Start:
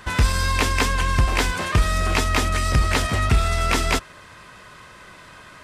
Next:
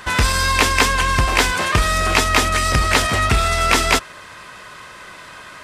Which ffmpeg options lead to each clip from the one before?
ffmpeg -i in.wav -af "lowshelf=frequency=290:gain=-8,volume=7dB" out.wav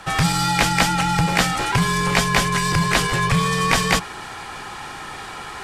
ffmpeg -i in.wav -af "areverse,acompressor=mode=upward:threshold=-22dB:ratio=2.5,areverse,afreqshift=-220,volume=-2.5dB" out.wav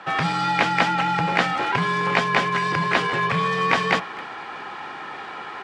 ffmpeg -i in.wav -filter_complex "[0:a]highpass=230,lowpass=2800,asplit=2[link_01][link_02];[link_02]adelay=260,highpass=300,lowpass=3400,asoftclip=type=hard:threshold=-11.5dB,volume=-18dB[link_03];[link_01][link_03]amix=inputs=2:normalize=0" out.wav

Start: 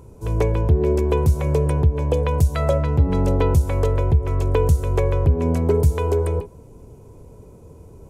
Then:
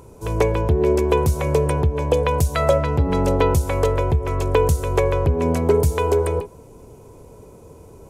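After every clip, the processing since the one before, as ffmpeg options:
ffmpeg -i in.wav -af "lowshelf=frequency=290:gain=-9.5,volume=6dB" out.wav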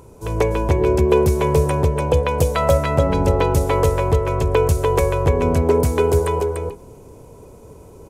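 ffmpeg -i in.wav -af "aecho=1:1:295:0.668" out.wav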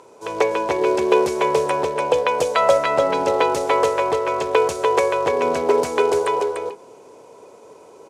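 ffmpeg -i in.wav -af "acrusher=bits=7:mode=log:mix=0:aa=0.000001,highpass=480,lowpass=6400,volume=3.5dB" out.wav

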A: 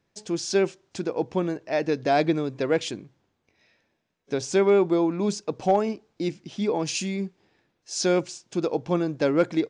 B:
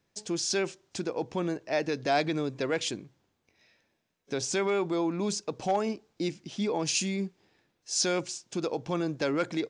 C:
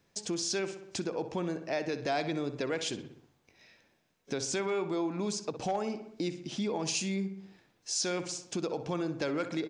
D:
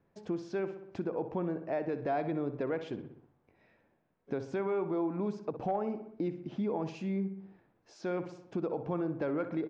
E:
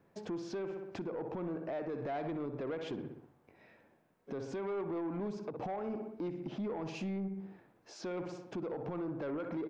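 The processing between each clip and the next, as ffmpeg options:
ffmpeg -i in.wav -filter_complex "[0:a]highshelf=frequency=4200:gain=6,acrossover=split=790[link_01][link_02];[link_01]alimiter=limit=-21dB:level=0:latency=1[link_03];[link_03][link_02]amix=inputs=2:normalize=0,volume=-2.5dB" out.wav
ffmpeg -i in.wav -filter_complex "[0:a]asplit=2[link_01][link_02];[link_02]adelay=62,lowpass=frequency=2900:poles=1,volume=-11dB,asplit=2[link_03][link_04];[link_04]adelay=62,lowpass=frequency=2900:poles=1,volume=0.51,asplit=2[link_05][link_06];[link_06]adelay=62,lowpass=frequency=2900:poles=1,volume=0.51,asplit=2[link_07][link_08];[link_08]adelay=62,lowpass=frequency=2900:poles=1,volume=0.51,asplit=2[link_09][link_10];[link_10]adelay=62,lowpass=frequency=2900:poles=1,volume=0.51[link_11];[link_03][link_05][link_07][link_09][link_11]amix=inputs=5:normalize=0[link_12];[link_01][link_12]amix=inputs=2:normalize=0,acompressor=threshold=-41dB:ratio=2,volume=4.5dB" out.wav
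ffmpeg -i in.wav -af "lowpass=1300" out.wav
ffmpeg -i in.wav -af "lowshelf=frequency=79:gain=-10.5,alimiter=level_in=9.5dB:limit=-24dB:level=0:latency=1:release=143,volume=-9.5dB,asoftclip=type=tanh:threshold=-37.5dB,volume=5.5dB" out.wav

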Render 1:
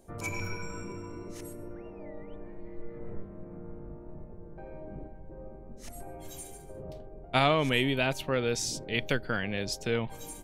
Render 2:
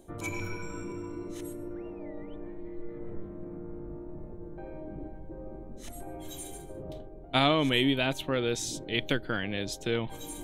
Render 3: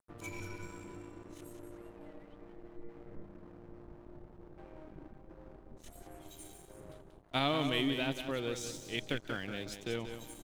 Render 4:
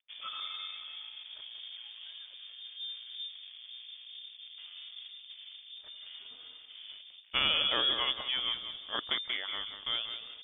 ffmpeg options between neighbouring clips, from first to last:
ffmpeg -i in.wav -af "superequalizer=6b=2:13b=1.78:14b=0.631,areverse,acompressor=mode=upward:threshold=-34dB:ratio=2.5,areverse,volume=-1dB" out.wav
ffmpeg -i in.wav -af "aecho=1:1:185|370|555|740:0.398|0.131|0.0434|0.0143,aeval=exprs='sgn(val(0))*max(abs(val(0))-0.00501,0)':channel_layout=same,volume=-7dB" out.wav
ffmpeg -i in.wav -af "lowpass=frequency=3100:width_type=q:width=0.5098,lowpass=frequency=3100:width_type=q:width=0.6013,lowpass=frequency=3100:width_type=q:width=0.9,lowpass=frequency=3100:width_type=q:width=2.563,afreqshift=-3600,volume=3dB" out.wav

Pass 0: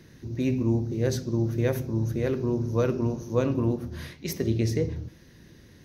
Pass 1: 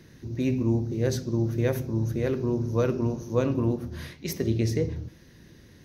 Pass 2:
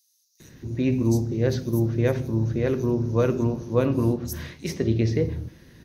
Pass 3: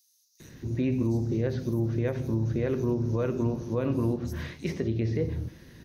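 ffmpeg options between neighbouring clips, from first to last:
ffmpeg -i in.wav -af anull out.wav
ffmpeg -i in.wav -filter_complex "[0:a]acrossover=split=5500[link_01][link_02];[link_01]adelay=400[link_03];[link_03][link_02]amix=inputs=2:normalize=0,volume=3dB" out.wav
ffmpeg -i in.wav -filter_complex "[0:a]acrossover=split=3300[link_01][link_02];[link_02]acompressor=threshold=-50dB:ratio=4:attack=1:release=60[link_03];[link_01][link_03]amix=inputs=2:normalize=0,alimiter=limit=-18dB:level=0:latency=1:release=210" out.wav

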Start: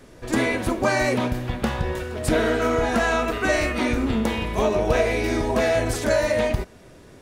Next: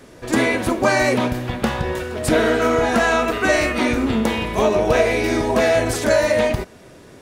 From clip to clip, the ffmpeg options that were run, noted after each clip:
ffmpeg -i in.wav -af "lowshelf=frequency=66:gain=-11,volume=4.5dB" out.wav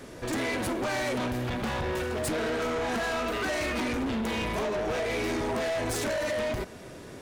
ffmpeg -i in.wav -af "acompressor=threshold=-19dB:ratio=6,asoftclip=type=tanh:threshold=-27dB" out.wav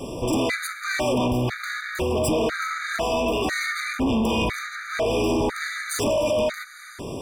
ffmpeg -i in.wav -filter_complex "[0:a]asplit=2[link_01][link_02];[link_02]acompressor=threshold=-38dB:ratio=6,volume=2.5dB[link_03];[link_01][link_03]amix=inputs=2:normalize=0,afftfilt=real='re*gt(sin(2*PI*1*pts/sr)*(1-2*mod(floor(b*sr/1024/1200),2)),0)':imag='im*gt(sin(2*PI*1*pts/sr)*(1-2*mod(floor(b*sr/1024/1200),2)),0)':win_size=1024:overlap=0.75,volume=5dB" out.wav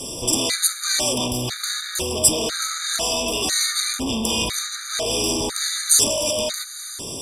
ffmpeg -i in.wav -af "lowpass=frequency=12000:width=0.5412,lowpass=frequency=12000:width=1.3066,aexciter=amount=9.3:drive=2.8:freq=3200,volume=-3.5dB" out.wav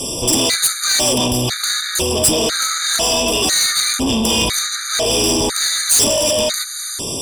ffmpeg -i in.wav -af "asoftclip=type=tanh:threshold=-16.5dB,volume=8dB" out.wav

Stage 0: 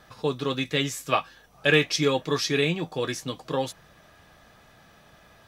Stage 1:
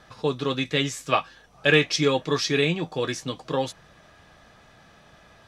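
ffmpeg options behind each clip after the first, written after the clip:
ffmpeg -i in.wav -af "lowpass=8600,volume=1.5dB" out.wav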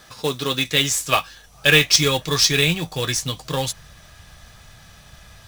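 ffmpeg -i in.wav -af "crystalizer=i=4:c=0,acrusher=bits=3:mode=log:mix=0:aa=0.000001,asubboost=boost=6.5:cutoff=120,volume=1dB" out.wav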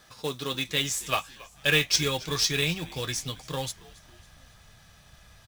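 ffmpeg -i in.wav -filter_complex "[0:a]asplit=5[link_01][link_02][link_03][link_04][link_05];[link_02]adelay=275,afreqshift=-88,volume=-21dB[link_06];[link_03]adelay=550,afreqshift=-176,volume=-26.8dB[link_07];[link_04]adelay=825,afreqshift=-264,volume=-32.7dB[link_08];[link_05]adelay=1100,afreqshift=-352,volume=-38.5dB[link_09];[link_01][link_06][link_07][link_08][link_09]amix=inputs=5:normalize=0,volume=-8.5dB" out.wav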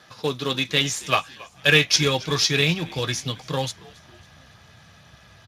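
ffmpeg -i in.wav -filter_complex "[0:a]asplit=2[link_01][link_02];[link_02]adynamicsmooth=sensitivity=4.5:basefreq=7700,volume=1dB[link_03];[link_01][link_03]amix=inputs=2:normalize=0" -ar 32000 -c:a libspeex -b:a 36k out.spx

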